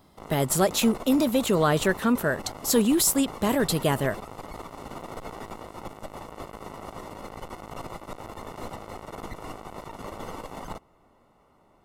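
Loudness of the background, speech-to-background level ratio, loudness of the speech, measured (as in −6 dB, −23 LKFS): −40.0 LKFS, 16.0 dB, −24.0 LKFS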